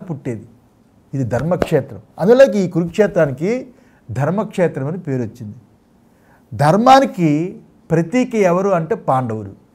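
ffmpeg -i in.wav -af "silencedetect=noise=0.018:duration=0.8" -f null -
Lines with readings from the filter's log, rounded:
silence_start: 5.59
silence_end: 6.52 | silence_duration: 0.93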